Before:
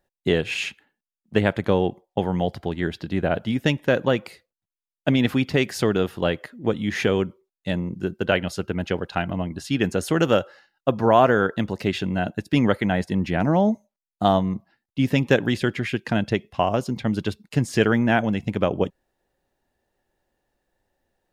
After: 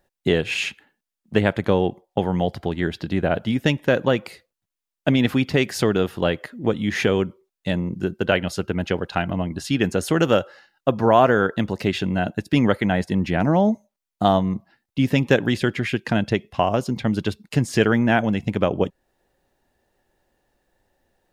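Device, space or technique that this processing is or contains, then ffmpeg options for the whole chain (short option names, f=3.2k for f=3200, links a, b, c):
parallel compression: -filter_complex "[0:a]asplit=2[a][b];[b]acompressor=threshold=-33dB:ratio=6,volume=-0.5dB[c];[a][c]amix=inputs=2:normalize=0"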